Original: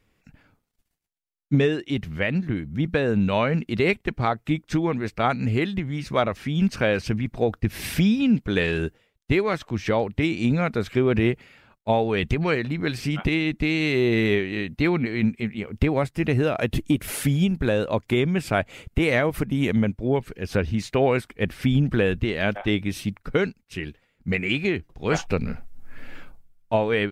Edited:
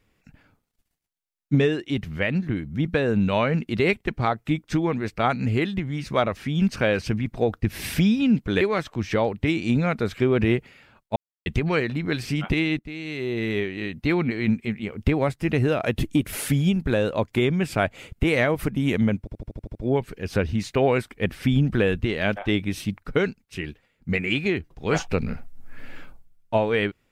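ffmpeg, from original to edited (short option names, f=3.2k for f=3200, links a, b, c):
-filter_complex "[0:a]asplit=12[a][b][c][d][e][f][g][h][i][j][k][l];[a]atrim=end=8.612[m];[b]atrim=start=9.358:end=11.91,asetpts=PTS-STARTPTS,afade=t=out:st=2.548:d=0.004:c=hsin[n];[c]atrim=start=11.91:end=12.21,asetpts=PTS-STARTPTS,volume=0[o];[d]atrim=start=12.21:end=13.54,asetpts=PTS-STARTPTS,afade=t=in:d=0.004:c=hsin,afade=t=out:st=1.326:d=0.004:c=hsin:silence=0.16788[p];[e]atrim=start=13.54:end=20.022,asetpts=PTS-STARTPTS,afade=t=in:d=1.48:silence=0.16788[q];[f]atrim=start=19.938:end=20.022[r];[g]atrim=start=19.938:end=20.022[s];[h]atrim=start=19.938:end=20.022[t];[i]atrim=start=19.938:end=20.022[u];[j]atrim=start=19.938:end=20.022[v];[k]atrim=start=19.938:end=20.022[w];[l]atrim=start=19.938[x];[n][o][p][q]concat=n=4:v=0:a=1[y];[m][y]acrossfade=d=0.004:c1=hsin:c2=hsin[z];[z][r]acrossfade=d=0.004:c1=hsin:c2=hsin[aa];[aa][s]acrossfade=d=0.004:c1=hsin:c2=hsin[ab];[ab][t]acrossfade=d=0.004:c1=hsin:c2=hsin[ac];[ac][u]acrossfade=d=0.004:c1=hsin:c2=hsin[ad];[ad][v]acrossfade=d=0.004:c1=hsin:c2=hsin[ae];[ae][w]acrossfade=d=0.004:c1=hsin:c2=hsin[af];[af][x]acrossfade=d=0.004:c1=hsin:c2=hsin"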